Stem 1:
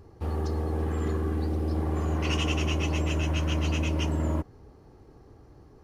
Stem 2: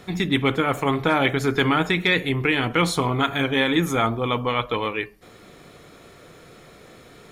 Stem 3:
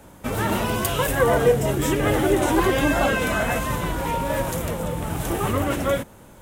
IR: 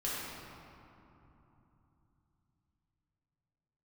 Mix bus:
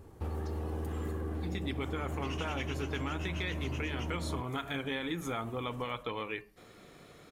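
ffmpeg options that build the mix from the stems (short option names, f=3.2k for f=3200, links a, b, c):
-filter_complex "[0:a]equalizer=f=5.2k:w=1.5:g=-3,volume=-2dB[a];[1:a]adelay=1350,volume=-8dB[b];[2:a]acompressor=threshold=-31dB:ratio=2.5,volume=-17.5dB[c];[a][b][c]amix=inputs=3:normalize=0,acompressor=threshold=-33dB:ratio=5"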